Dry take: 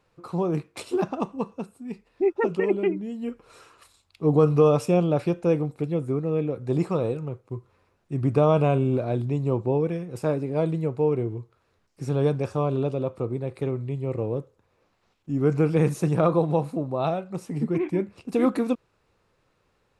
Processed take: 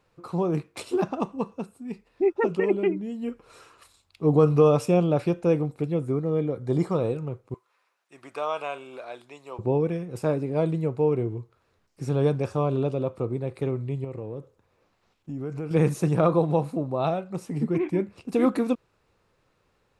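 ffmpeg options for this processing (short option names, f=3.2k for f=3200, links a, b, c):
-filter_complex "[0:a]asettb=1/sr,asplit=3[a][b][c];[a]atrim=end=6.114[d];[b]atrim=start=6.11:end=6.95,asetpts=PTS-STARTPTS,afade=t=in:d=0.004:c=qsin,afade=t=out:st=0.836:d=0.004:c=qsin,asuperstop=centerf=2600:order=8:qfactor=7.6[e];[c]atrim=start=6.946[f];[d][e]acrossfade=d=0.004:c1=hsin:c2=qsin[g];[g][f]acrossfade=d=0.004:c1=qsin:c2=hsin,asettb=1/sr,asplit=3[h][i][j];[h]atrim=end=7.544[k];[i]atrim=start=7.54:end=9.59,asetpts=PTS-STARTPTS,afade=t=in:d=0.004:c=qsin,afade=t=out:st=2.046:d=0.004:c=qsin,highpass=1k[l];[j]atrim=start=9.586[m];[k][l]acrossfade=d=0.004:c1=hsin:c2=qsin[n];[n][m]acrossfade=d=0.004:c1=qsin:c2=hsin,asettb=1/sr,asplit=3[o][p][q];[o]atrim=end=14.044[r];[p]atrim=start=14.04:end=15.71,asetpts=PTS-STARTPTS,afade=t=in:d=0.004:c=qsin,afade=t=out:st=1.666:d=0.004:c=qsin,acompressor=threshold=-32dB:ratio=3:attack=3.2:release=140:knee=1:detection=peak[s];[q]atrim=start=15.706[t];[r][s]acrossfade=d=0.004:c1=hsin:c2=qsin[u];[u][t]acrossfade=d=0.004:c1=qsin:c2=hsin"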